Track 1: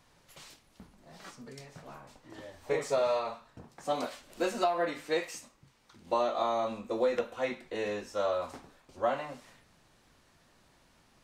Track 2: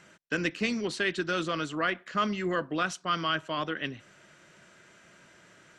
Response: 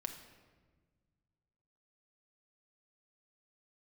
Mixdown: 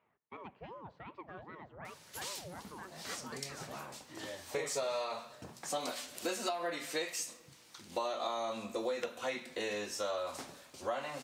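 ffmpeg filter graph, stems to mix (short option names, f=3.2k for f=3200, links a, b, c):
-filter_complex "[0:a]highshelf=f=2.6k:g=12,bandreject=f=60:t=h:w=6,bandreject=f=120:t=h:w=6,bandreject=f=180:t=h:w=6,bandreject=f=240:t=h:w=6,adelay=1850,volume=0dB,asplit=2[a][b];[b]volume=-13.5dB[c];[1:a]lowpass=1.3k,aeval=exprs='val(0)*sin(2*PI*490*n/s+490*0.65/2.6*sin(2*PI*2.6*n/s))':c=same,volume=-16.5dB,asplit=2[d][e];[e]volume=-8.5dB[f];[2:a]atrim=start_sample=2205[g];[c][f]amix=inputs=2:normalize=0[h];[h][g]afir=irnorm=-1:irlink=0[i];[a][d][i]amix=inputs=3:normalize=0,highpass=91,acompressor=threshold=-36dB:ratio=3"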